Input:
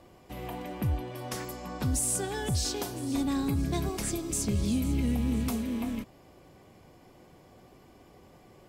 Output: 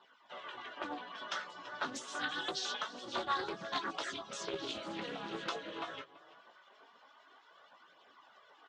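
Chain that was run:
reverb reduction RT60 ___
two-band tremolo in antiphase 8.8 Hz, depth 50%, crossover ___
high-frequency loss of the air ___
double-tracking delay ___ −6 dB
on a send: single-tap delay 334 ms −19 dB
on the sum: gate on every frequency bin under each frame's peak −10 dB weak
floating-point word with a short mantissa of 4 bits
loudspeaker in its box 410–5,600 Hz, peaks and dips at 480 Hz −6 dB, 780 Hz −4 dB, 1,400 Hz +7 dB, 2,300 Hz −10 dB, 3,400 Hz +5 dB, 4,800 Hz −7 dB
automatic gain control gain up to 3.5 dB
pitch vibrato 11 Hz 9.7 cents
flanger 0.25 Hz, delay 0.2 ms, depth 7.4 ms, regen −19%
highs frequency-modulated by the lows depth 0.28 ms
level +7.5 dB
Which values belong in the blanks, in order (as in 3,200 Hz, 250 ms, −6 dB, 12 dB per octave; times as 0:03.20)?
0.7 s, 2,200 Hz, 97 metres, 18 ms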